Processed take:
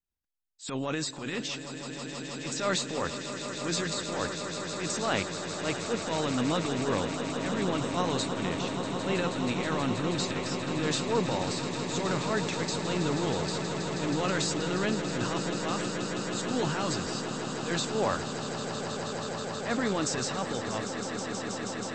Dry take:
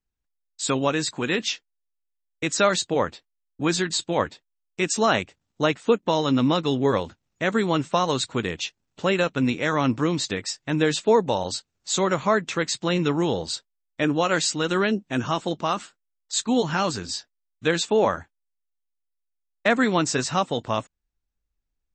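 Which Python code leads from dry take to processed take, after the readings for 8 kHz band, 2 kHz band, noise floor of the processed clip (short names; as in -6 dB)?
-4.5 dB, -6.5 dB, -39 dBFS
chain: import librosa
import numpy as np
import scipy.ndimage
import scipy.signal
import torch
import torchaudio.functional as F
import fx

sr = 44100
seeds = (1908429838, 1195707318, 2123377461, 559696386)

y = fx.transient(x, sr, attack_db=-11, sustain_db=7)
y = fx.echo_swell(y, sr, ms=160, loudest=8, wet_db=-11.5)
y = y * librosa.db_to_amplitude(-8.0)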